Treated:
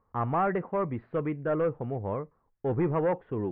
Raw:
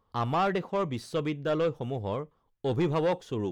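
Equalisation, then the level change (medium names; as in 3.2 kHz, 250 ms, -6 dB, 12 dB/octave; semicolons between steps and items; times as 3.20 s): steep low-pass 2.1 kHz 36 dB/octave; 0.0 dB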